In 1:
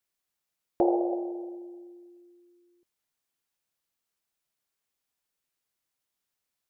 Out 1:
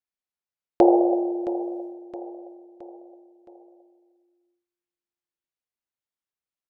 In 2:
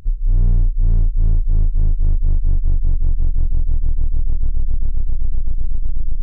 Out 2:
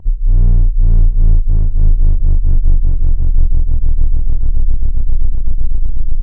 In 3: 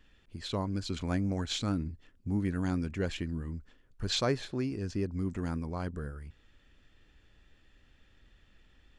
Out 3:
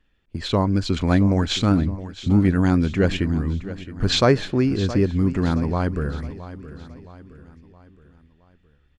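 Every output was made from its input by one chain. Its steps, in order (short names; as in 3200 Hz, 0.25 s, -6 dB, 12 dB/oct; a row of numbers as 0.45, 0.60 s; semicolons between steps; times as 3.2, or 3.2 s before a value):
high shelf 5600 Hz -10.5 dB; gate -48 dBFS, range -17 dB; feedback echo 0.668 s, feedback 46%, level -14.5 dB; normalise peaks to -3 dBFS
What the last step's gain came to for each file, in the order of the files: +8.0, +4.5, +13.5 dB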